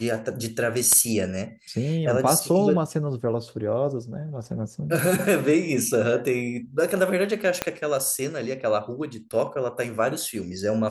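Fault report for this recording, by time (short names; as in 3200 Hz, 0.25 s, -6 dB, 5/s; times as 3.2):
7.62 pop -7 dBFS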